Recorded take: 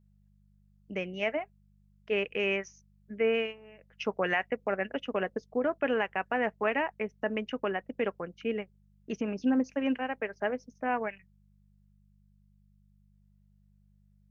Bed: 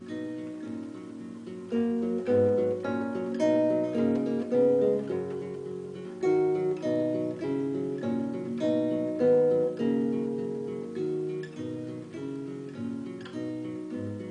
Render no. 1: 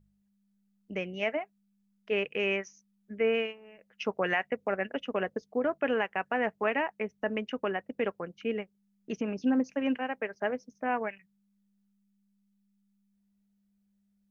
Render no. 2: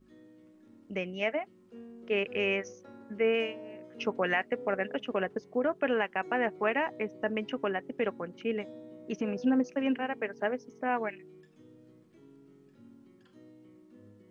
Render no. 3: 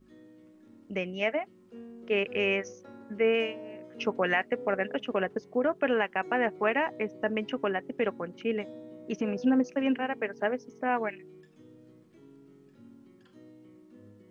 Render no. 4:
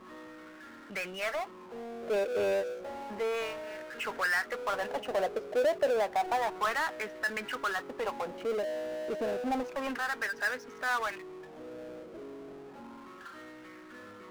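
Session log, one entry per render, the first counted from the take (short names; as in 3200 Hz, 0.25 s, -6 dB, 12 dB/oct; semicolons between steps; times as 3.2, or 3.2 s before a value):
de-hum 50 Hz, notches 3
add bed -20.5 dB
gain +2 dB
wah 0.31 Hz 570–1600 Hz, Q 4; power-law curve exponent 0.5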